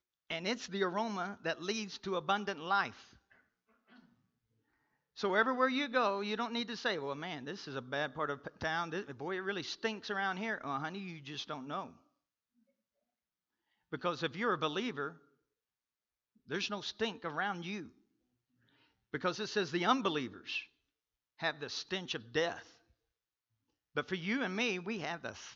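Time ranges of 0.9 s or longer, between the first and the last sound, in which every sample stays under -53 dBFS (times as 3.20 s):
4.00–5.17 s
11.96–13.92 s
15.17–16.49 s
17.90–19.13 s
22.73–23.96 s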